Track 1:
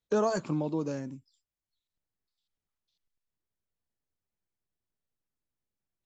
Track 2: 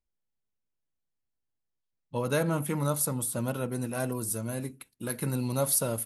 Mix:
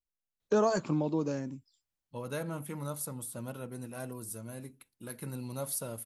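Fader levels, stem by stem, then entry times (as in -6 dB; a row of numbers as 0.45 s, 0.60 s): +0.5 dB, -9.5 dB; 0.40 s, 0.00 s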